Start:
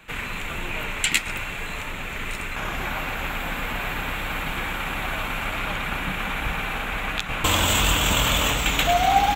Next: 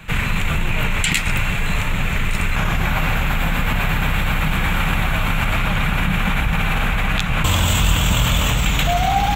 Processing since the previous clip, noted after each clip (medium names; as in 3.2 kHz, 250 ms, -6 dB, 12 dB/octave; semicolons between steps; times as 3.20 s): resonant low shelf 220 Hz +8 dB, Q 1.5; in parallel at +3 dB: compressor with a negative ratio -25 dBFS, ratio -1; on the sum: trim -2 dB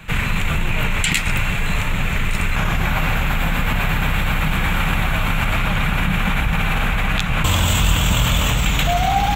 no audible change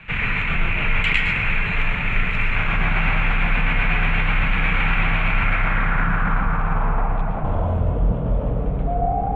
low-pass sweep 2.4 kHz -> 530 Hz, 5.22–7.98 s; on a send at -1 dB: reverberation RT60 0.55 s, pre-delay 107 ms; on the sum: trim -6.5 dB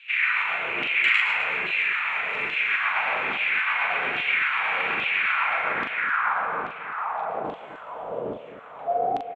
LFO high-pass saw down 1.2 Hz 310–3300 Hz; loudspeakers at several distances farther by 14 m -5 dB, 89 m -11 dB; trim -5 dB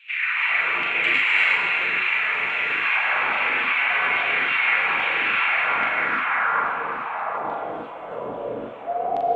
gated-style reverb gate 380 ms rising, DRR -3.5 dB; trim -2 dB; Opus 48 kbps 48 kHz